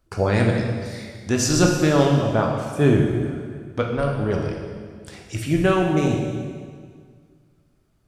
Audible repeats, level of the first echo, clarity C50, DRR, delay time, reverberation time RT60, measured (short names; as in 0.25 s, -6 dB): none, none, 3.0 dB, 0.5 dB, none, 1.9 s